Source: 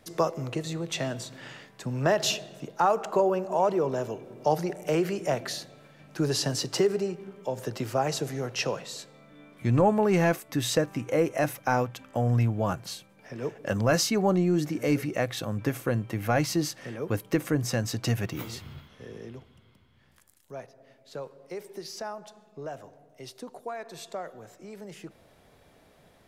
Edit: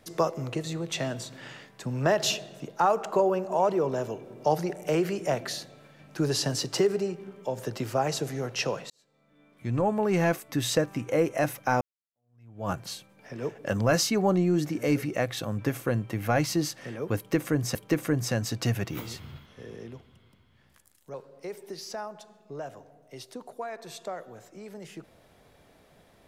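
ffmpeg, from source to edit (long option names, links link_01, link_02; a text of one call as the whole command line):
ffmpeg -i in.wav -filter_complex "[0:a]asplit=5[link_01][link_02][link_03][link_04][link_05];[link_01]atrim=end=8.9,asetpts=PTS-STARTPTS,afade=type=out:start_time=8.896:duration=0.004:curve=hsin[link_06];[link_02]atrim=start=8.9:end=11.81,asetpts=PTS-STARTPTS,afade=type=in:duration=1.54,afade=type=out:start_time=2.906:duration=0.004:curve=hsin[link_07];[link_03]atrim=start=11.81:end=17.752,asetpts=PTS-STARTPTS,afade=type=in:duration=0.89:curve=exp[link_08];[link_04]atrim=start=17.168:end=20.562[link_09];[link_05]atrim=start=21.208[link_10];[link_06][link_07][link_08]concat=n=3:v=0:a=1[link_11];[link_11][link_09]acrossfade=duration=0.004:curve1=hsin:curve2=hsin[link_12];[link_12][link_10]acrossfade=duration=0.004:curve1=hsin:curve2=hsin" out.wav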